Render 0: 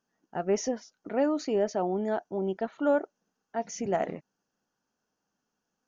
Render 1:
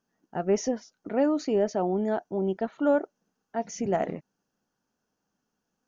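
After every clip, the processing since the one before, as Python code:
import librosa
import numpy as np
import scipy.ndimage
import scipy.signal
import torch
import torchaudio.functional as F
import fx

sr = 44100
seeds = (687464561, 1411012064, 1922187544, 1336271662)

y = fx.low_shelf(x, sr, hz=370.0, db=5.0)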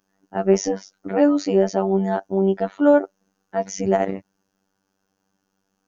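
y = fx.robotise(x, sr, hz=96.8)
y = y * 10.0 ** (9.0 / 20.0)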